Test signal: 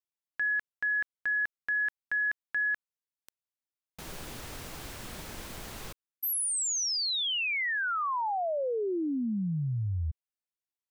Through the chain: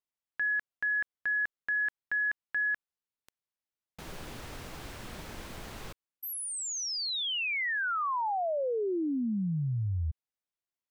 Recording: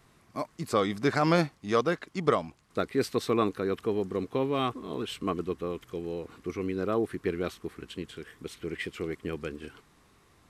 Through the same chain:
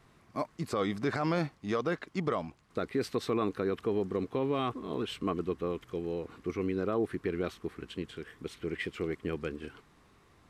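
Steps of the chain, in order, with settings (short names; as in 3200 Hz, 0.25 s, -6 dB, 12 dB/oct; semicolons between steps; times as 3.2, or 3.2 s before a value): high shelf 5400 Hz -8 dB; limiter -21 dBFS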